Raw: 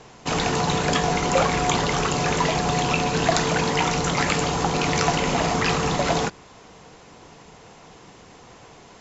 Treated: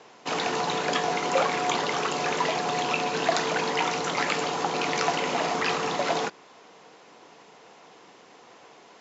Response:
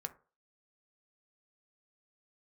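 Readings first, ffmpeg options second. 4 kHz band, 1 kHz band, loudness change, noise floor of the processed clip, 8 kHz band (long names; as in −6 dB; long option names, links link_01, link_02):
−3.5 dB, −3.0 dB, −4.5 dB, −52 dBFS, can't be measured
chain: -af "highpass=300,lowpass=5900,volume=-3dB"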